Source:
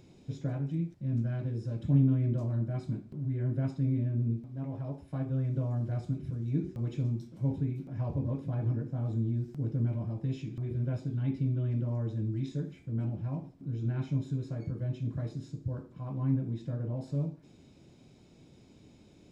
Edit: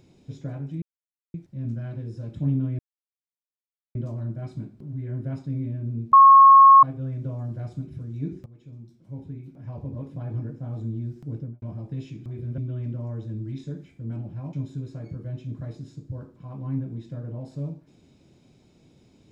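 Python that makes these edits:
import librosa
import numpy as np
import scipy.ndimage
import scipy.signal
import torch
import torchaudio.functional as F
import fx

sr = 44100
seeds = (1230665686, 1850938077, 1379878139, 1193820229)

y = fx.studio_fade_out(x, sr, start_s=9.67, length_s=0.27)
y = fx.edit(y, sr, fx.insert_silence(at_s=0.82, length_s=0.52),
    fx.insert_silence(at_s=2.27, length_s=1.16),
    fx.bleep(start_s=4.45, length_s=0.7, hz=1090.0, db=-7.5),
    fx.fade_in_from(start_s=6.78, length_s=1.89, floor_db=-19.0),
    fx.cut(start_s=10.9, length_s=0.56),
    fx.cut(start_s=13.41, length_s=0.68), tone=tone)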